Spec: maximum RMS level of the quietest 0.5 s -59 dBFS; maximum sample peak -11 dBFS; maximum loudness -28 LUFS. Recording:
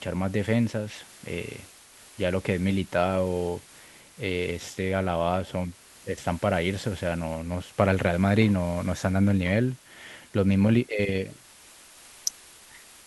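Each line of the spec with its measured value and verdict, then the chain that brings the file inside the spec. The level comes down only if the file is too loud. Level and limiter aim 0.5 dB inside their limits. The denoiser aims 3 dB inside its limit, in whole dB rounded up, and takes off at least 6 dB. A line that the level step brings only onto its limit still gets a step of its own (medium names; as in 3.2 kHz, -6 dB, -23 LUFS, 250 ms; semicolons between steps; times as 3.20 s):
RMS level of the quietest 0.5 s -51 dBFS: fail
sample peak -6.0 dBFS: fail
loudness -26.5 LUFS: fail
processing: noise reduction 9 dB, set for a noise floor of -51 dBFS; trim -2 dB; peak limiter -11.5 dBFS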